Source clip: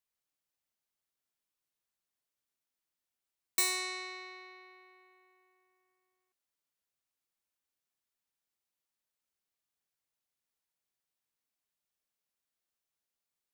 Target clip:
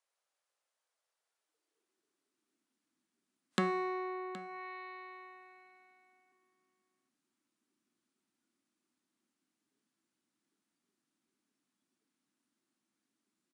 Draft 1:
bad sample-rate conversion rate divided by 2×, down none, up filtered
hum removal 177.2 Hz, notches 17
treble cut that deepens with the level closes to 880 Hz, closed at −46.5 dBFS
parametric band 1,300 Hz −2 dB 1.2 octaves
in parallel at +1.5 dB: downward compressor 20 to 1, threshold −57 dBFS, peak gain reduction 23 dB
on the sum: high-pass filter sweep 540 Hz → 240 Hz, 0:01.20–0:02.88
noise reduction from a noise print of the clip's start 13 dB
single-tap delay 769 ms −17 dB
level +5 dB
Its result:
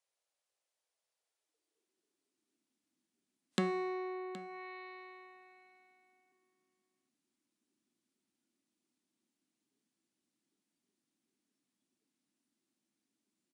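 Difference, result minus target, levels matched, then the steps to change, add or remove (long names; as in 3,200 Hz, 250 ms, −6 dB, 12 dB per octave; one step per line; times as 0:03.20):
1,000 Hz band −3.0 dB
change: parametric band 1,300 Hz +5 dB 1.2 octaves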